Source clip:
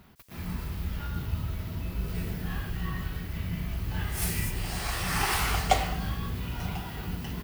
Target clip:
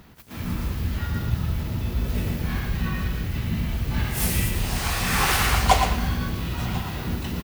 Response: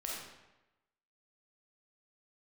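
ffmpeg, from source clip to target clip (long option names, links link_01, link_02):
-filter_complex "[0:a]asplit=2[link_01][link_02];[link_02]asetrate=58866,aresample=44100,atempo=0.749154,volume=-3dB[link_03];[link_01][link_03]amix=inputs=2:normalize=0,asplit=2[link_04][link_05];[link_05]aecho=0:1:116:0.398[link_06];[link_04][link_06]amix=inputs=2:normalize=0,volume=4dB"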